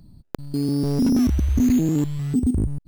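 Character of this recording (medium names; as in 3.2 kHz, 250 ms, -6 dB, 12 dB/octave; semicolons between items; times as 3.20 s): noise floor -64 dBFS; spectral tilt -7.5 dB/octave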